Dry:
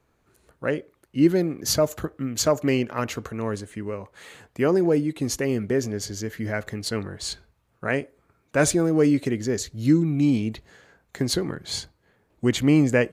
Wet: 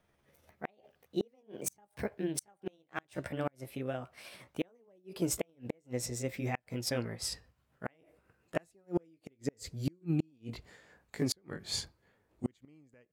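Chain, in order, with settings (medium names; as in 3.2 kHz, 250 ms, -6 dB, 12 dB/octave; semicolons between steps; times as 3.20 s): pitch bend over the whole clip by +6 st ending unshifted; inverted gate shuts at -15 dBFS, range -38 dB; trim -4.5 dB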